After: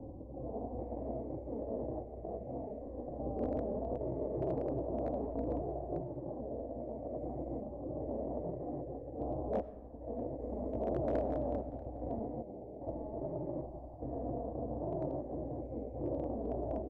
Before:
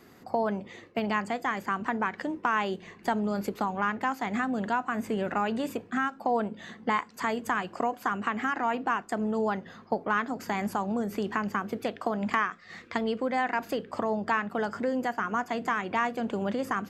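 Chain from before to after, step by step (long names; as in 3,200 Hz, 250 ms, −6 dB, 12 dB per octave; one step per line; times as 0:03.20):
spectrum averaged block by block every 400 ms
0:12.18–0:12.87: high-pass filter 180 Hz 6 dB per octave
gate on every frequency bin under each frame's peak −15 dB weak
elliptic low-pass filter 700 Hz, stop band 50 dB
frequency shifter −39 Hz
asymmetric clip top −41 dBFS
single-tap delay 637 ms −22 dB
on a send at −15 dB: convolution reverb RT60 1.3 s, pre-delay 45 ms
on the sum: highs frequency-modulated by the lows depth 0.16 ms
level +13 dB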